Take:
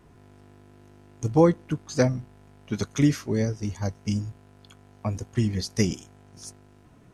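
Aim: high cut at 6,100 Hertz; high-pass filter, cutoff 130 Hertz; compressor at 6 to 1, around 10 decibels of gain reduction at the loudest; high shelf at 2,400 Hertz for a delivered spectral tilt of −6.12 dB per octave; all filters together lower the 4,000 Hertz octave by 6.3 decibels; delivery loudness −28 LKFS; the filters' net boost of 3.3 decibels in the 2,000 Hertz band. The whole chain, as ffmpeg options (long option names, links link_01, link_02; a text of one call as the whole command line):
ffmpeg -i in.wav -af "highpass=130,lowpass=6100,equalizer=frequency=2000:width_type=o:gain=7,highshelf=frequency=2400:gain=-5,equalizer=frequency=4000:width_type=o:gain=-4,acompressor=threshold=-24dB:ratio=6,volume=5dB" out.wav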